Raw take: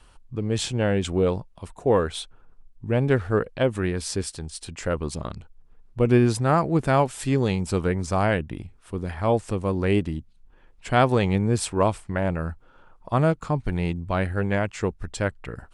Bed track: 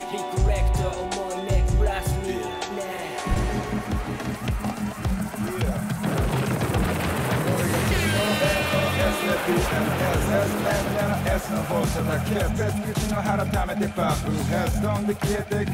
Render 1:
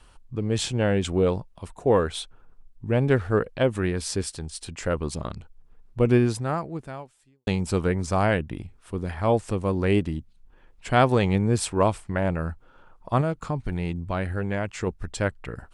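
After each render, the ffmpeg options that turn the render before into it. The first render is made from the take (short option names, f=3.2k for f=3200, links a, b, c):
-filter_complex "[0:a]asettb=1/sr,asplit=3[a][b][c];[a]atrim=end=13.214[d];[b]atrim=start=13.21:end=14.87,asetpts=PTS-STARTPTS,afade=t=in:d=0.004:c=qsin,afade=t=out:st=1.656:d=0.004:c=qsin,acompressor=threshold=-24dB:ratio=2:attack=3.2:release=140:knee=1:detection=peak[e];[c]atrim=start=14.866[f];[d][e]acrossfade=d=0.004:c1=hsin:c2=qsin[g];[g][f]acrossfade=d=0.004:c1=qsin:c2=hsin,asplit=2[h][i];[h]atrim=end=7.47,asetpts=PTS-STARTPTS,afade=t=out:st=6.06:d=1.41:c=qua[j];[i]atrim=start=7.47,asetpts=PTS-STARTPTS,afade=t=in:d=0.004:c=hsin[k];[j][k]concat=n=2:v=0:a=1"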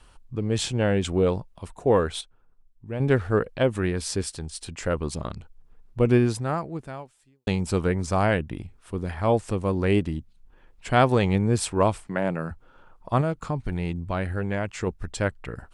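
-filter_complex "[0:a]asettb=1/sr,asplit=3[a][b][c];[a]atrim=end=12.074[d];[b]atrim=start=12.07:end=12.51,asetpts=PTS-STARTPTS,afade=t=in:d=0.004:c=qsin,afade=t=out:st=0.436:d=0.004:c=qsin,highpass=f=140:w=0.5412,highpass=f=140:w=1.3066[e];[c]atrim=start=12.506[f];[d][e]acrossfade=d=0.004:c1=hsin:c2=qsin[g];[g][f]acrossfade=d=0.004:c1=qsin:c2=hsin,asplit=3[h][i][j];[h]atrim=end=2.212[k];[i]atrim=start=2.208:end=3.002,asetpts=PTS-STARTPTS,volume=-9dB[l];[j]atrim=start=2.998[m];[k][l]acrossfade=d=0.004:c1=hsin:c2=hsin[n];[n][m]acrossfade=d=0.004:c1=hsin:c2=hsin"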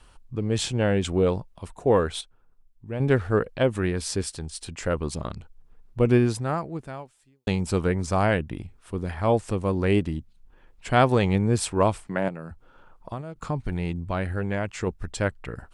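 -filter_complex "[0:a]asettb=1/sr,asplit=3[a][b][c];[a]atrim=end=12.284[d];[b]atrim=start=12.28:end=13.36,asetpts=PTS-STARTPTS,afade=t=in:d=0.004:c=qsin,afade=t=out:st=1.076:d=0.004:c=qsin,acrossover=split=1100|2300[e][f][g];[e]acompressor=threshold=-34dB:ratio=4[h];[f]acompressor=threshold=-51dB:ratio=4[i];[g]acompressor=threshold=-59dB:ratio=4[j];[h][i][j]amix=inputs=3:normalize=0[k];[c]atrim=start=13.356[l];[d][k]acrossfade=d=0.004:c1=hsin:c2=qsin[m];[m][l]acrossfade=d=0.004:c1=qsin:c2=hsin"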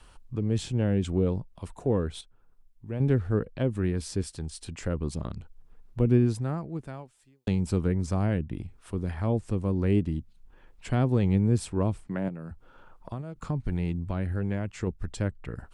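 -filter_complex "[0:a]acrossover=split=350[a][b];[b]acompressor=threshold=-45dB:ratio=2[c];[a][c]amix=inputs=2:normalize=0"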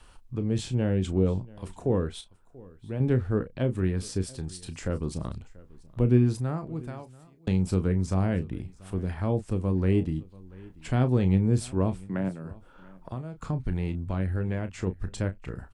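-filter_complex "[0:a]asplit=2[a][b];[b]adelay=32,volume=-10.5dB[c];[a][c]amix=inputs=2:normalize=0,aecho=1:1:686:0.075"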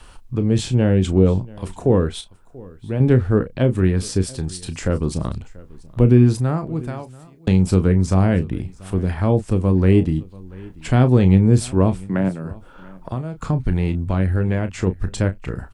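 -af "volume=9.5dB,alimiter=limit=-2dB:level=0:latency=1"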